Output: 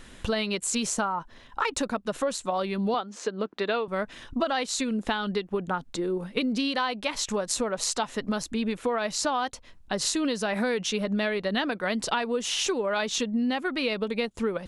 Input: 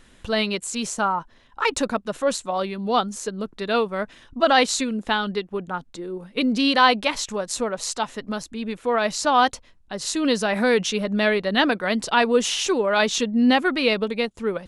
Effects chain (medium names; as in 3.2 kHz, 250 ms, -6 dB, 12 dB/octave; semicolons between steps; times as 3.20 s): 2.94–3.88 s: band-pass 280–3900 Hz; compression 12:1, threshold -29 dBFS, peak gain reduction 18.5 dB; trim +5 dB